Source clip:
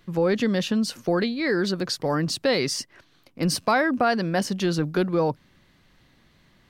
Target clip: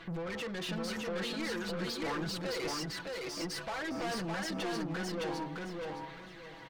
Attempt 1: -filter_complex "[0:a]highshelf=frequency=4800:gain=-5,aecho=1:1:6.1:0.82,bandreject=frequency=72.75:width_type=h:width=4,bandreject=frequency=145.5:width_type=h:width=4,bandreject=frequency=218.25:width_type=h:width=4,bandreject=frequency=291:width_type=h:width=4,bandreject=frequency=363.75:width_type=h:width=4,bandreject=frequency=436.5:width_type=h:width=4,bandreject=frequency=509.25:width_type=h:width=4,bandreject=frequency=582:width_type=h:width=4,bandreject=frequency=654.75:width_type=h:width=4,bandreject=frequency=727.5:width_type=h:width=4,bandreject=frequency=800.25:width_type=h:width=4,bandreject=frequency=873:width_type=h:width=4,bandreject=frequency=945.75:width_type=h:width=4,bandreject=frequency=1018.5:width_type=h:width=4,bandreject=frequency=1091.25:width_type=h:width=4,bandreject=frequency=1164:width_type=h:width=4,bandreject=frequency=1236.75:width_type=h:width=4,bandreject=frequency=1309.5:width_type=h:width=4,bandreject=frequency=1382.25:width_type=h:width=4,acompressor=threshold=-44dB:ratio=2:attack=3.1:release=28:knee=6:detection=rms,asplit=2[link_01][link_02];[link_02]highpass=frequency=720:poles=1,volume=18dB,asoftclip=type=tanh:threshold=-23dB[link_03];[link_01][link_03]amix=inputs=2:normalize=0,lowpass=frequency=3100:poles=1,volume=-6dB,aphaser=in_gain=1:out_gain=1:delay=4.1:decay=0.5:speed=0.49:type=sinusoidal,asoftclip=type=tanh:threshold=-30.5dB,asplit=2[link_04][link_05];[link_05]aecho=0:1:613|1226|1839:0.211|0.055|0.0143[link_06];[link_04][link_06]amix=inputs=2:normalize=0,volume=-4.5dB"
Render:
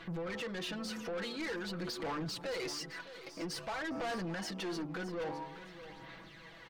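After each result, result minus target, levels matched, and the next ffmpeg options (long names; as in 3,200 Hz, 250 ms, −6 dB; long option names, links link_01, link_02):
echo-to-direct −11 dB; downward compressor: peak gain reduction +4.5 dB
-filter_complex "[0:a]highshelf=frequency=4800:gain=-5,aecho=1:1:6.1:0.82,bandreject=frequency=72.75:width_type=h:width=4,bandreject=frequency=145.5:width_type=h:width=4,bandreject=frequency=218.25:width_type=h:width=4,bandreject=frequency=291:width_type=h:width=4,bandreject=frequency=363.75:width_type=h:width=4,bandreject=frequency=436.5:width_type=h:width=4,bandreject=frequency=509.25:width_type=h:width=4,bandreject=frequency=582:width_type=h:width=4,bandreject=frequency=654.75:width_type=h:width=4,bandreject=frequency=727.5:width_type=h:width=4,bandreject=frequency=800.25:width_type=h:width=4,bandreject=frequency=873:width_type=h:width=4,bandreject=frequency=945.75:width_type=h:width=4,bandreject=frequency=1018.5:width_type=h:width=4,bandreject=frequency=1091.25:width_type=h:width=4,bandreject=frequency=1164:width_type=h:width=4,bandreject=frequency=1236.75:width_type=h:width=4,bandreject=frequency=1309.5:width_type=h:width=4,bandreject=frequency=1382.25:width_type=h:width=4,acompressor=threshold=-44dB:ratio=2:attack=3.1:release=28:knee=6:detection=rms,asplit=2[link_01][link_02];[link_02]highpass=frequency=720:poles=1,volume=18dB,asoftclip=type=tanh:threshold=-23dB[link_03];[link_01][link_03]amix=inputs=2:normalize=0,lowpass=frequency=3100:poles=1,volume=-6dB,aphaser=in_gain=1:out_gain=1:delay=4.1:decay=0.5:speed=0.49:type=sinusoidal,asoftclip=type=tanh:threshold=-30.5dB,asplit=2[link_04][link_05];[link_05]aecho=0:1:613|1226|1839|2452:0.75|0.195|0.0507|0.0132[link_06];[link_04][link_06]amix=inputs=2:normalize=0,volume=-4.5dB"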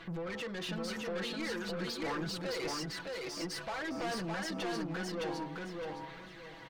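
downward compressor: peak gain reduction +4.5 dB
-filter_complex "[0:a]highshelf=frequency=4800:gain=-5,aecho=1:1:6.1:0.82,bandreject=frequency=72.75:width_type=h:width=4,bandreject=frequency=145.5:width_type=h:width=4,bandreject=frequency=218.25:width_type=h:width=4,bandreject=frequency=291:width_type=h:width=4,bandreject=frequency=363.75:width_type=h:width=4,bandreject=frequency=436.5:width_type=h:width=4,bandreject=frequency=509.25:width_type=h:width=4,bandreject=frequency=582:width_type=h:width=4,bandreject=frequency=654.75:width_type=h:width=4,bandreject=frequency=727.5:width_type=h:width=4,bandreject=frequency=800.25:width_type=h:width=4,bandreject=frequency=873:width_type=h:width=4,bandreject=frequency=945.75:width_type=h:width=4,bandreject=frequency=1018.5:width_type=h:width=4,bandreject=frequency=1091.25:width_type=h:width=4,bandreject=frequency=1164:width_type=h:width=4,bandreject=frequency=1236.75:width_type=h:width=4,bandreject=frequency=1309.5:width_type=h:width=4,bandreject=frequency=1382.25:width_type=h:width=4,acompressor=threshold=-35.5dB:ratio=2:attack=3.1:release=28:knee=6:detection=rms,asplit=2[link_01][link_02];[link_02]highpass=frequency=720:poles=1,volume=18dB,asoftclip=type=tanh:threshold=-23dB[link_03];[link_01][link_03]amix=inputs=2:normalize=0,lowpass=frequency=3100:poles=1,volume=-6dB,aphaser=in_gain=1:out_gain=1:delay=4.1:decay=0.5:speed=0.49:type=sinusoidal,asoftclip=type=tanh:threshold=-30.5dB,asplit=2[link_04][link_05];[link_05]aecho=0:1:613|1226|1839|2452:0.75|0.195|0.0507|0.0132[link_06];[link_04][link_06]amix=inputs=2:normalize=0,volume=-4.5dB"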